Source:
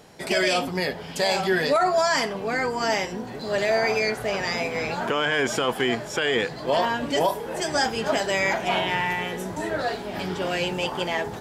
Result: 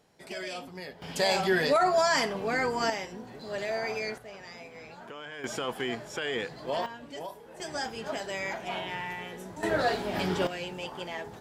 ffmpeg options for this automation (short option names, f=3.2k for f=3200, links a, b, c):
-af "asetnsamples=n=441:p=0,asendcmd='1.02 volume volume -3dB;2.9 volume volume -10dB;4.18 volume volume -19dB;5.44 volume volume -9dB;6.86 volume volume -17.5dB;7.6 volume volume -11dB;9.63 volume volume 0dB;10.47 volume volume -11dB',volume=-15.5dB"